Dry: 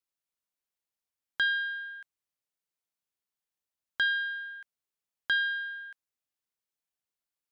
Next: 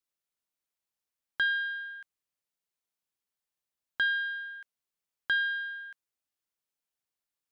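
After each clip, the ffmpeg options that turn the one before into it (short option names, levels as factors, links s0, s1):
-filter_complex "[0:a]acrossover=split=3700[s0][s1];[s1]acompressor=threshold=0.00282:ratio=4:attack=1:release=60[s2];[s0][s2]amix=inputs=2:normalize=0"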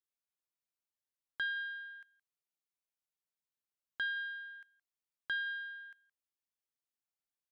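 -af "aecho=1:1:169:0.0841,volume=0.376"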